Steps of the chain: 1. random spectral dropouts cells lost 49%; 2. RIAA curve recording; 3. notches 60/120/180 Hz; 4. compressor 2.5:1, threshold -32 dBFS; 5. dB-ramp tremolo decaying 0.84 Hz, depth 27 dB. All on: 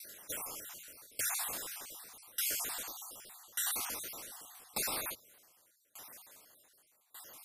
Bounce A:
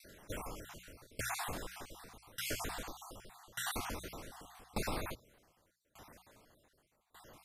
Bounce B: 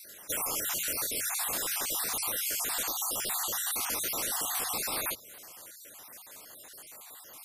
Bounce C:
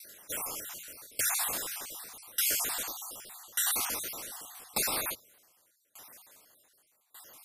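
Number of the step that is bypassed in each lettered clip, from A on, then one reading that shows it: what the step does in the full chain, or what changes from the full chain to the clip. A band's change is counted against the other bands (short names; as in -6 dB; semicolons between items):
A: 2, 8 kHz band -12.5 dB; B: 5, crest factor change -5.0 dB; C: 4, mean gain reduction 4.0 dB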